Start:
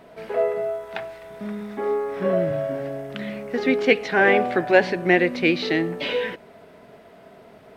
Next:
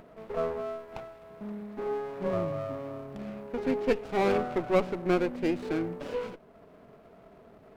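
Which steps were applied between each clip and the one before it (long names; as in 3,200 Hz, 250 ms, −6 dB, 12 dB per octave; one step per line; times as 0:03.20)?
parametric band 5,000 Hz −11 dB 2.4 octaves
upward compression, threshold −40 dBFS
windowed peak hold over 17 samples
level −7 dB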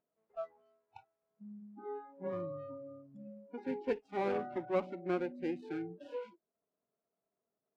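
low-pass filter 1,900 Hz 6 dB per octave
noise reduction from a noise print of the clip's start 28 dB
high-pass filter 230 Hz 6 dB per octave
level −6.5 dB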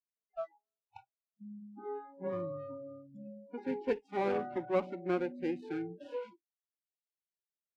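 noise reduction from a noise print of the clip's start 30 dB
level +2 dB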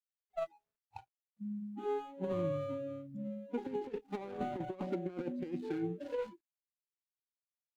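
running median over 25 samples
low-shelf EQ 170 Hz +5.5 dB
compressor whose output falls as the input rises −37 dBFS, ratio −0.5
level +1.5 dB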